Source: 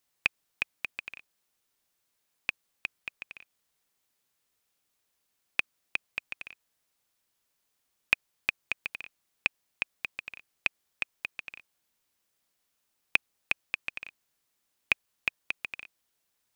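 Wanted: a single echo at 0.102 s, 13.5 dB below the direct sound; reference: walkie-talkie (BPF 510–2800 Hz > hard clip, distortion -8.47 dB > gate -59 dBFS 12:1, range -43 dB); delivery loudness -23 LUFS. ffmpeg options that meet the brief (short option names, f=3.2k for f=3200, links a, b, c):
-af "highpass=510,lowpass=2.8k,aecho=1:1:102:0.211,asoftclip=type=hard:threshold=-18.5dB,agate=range=-43dB:threshold=-59dB:ratio=12,volume=15.5dB"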